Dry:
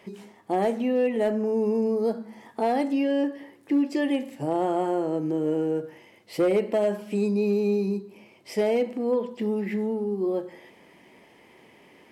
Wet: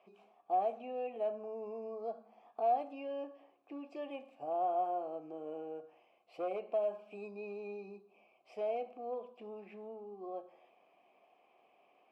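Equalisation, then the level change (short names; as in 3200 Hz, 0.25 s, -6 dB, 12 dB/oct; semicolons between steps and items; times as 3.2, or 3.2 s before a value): vowel filter a; -2.0 dB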